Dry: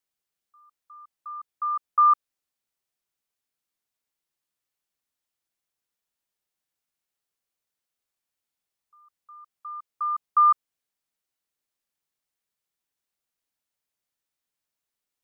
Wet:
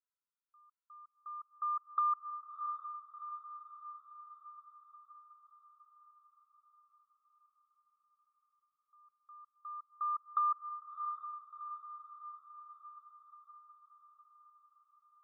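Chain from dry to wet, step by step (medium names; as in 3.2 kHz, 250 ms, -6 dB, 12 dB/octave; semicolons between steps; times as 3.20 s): low-pass 1.3 kHz 24 dB/octave; compression, threshold -23 dBFS, peak gain reduction 6 dB; rippled Chebyshev high-pass 960 Hz, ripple 9 dB; echo that smears into a reverb 713 ms, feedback 60%, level -7.5 dB; trim +1 dB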